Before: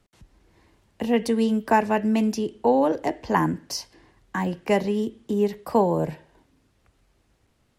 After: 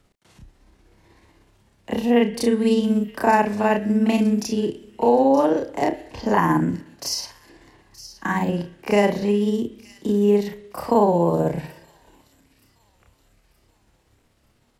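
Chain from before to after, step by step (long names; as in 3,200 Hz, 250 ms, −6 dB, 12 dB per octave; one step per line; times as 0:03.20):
in parallel at −0.5 dB: brickwall limiter −13.5 dBFS, peak gain reduction 8 dB
on the sum: time stretch by overlap-add 1.9×, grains 124 ms
delay with a high-pass on its return 922 ms, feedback 46%, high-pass 3,500 Hz, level −14 dB
level −1 dB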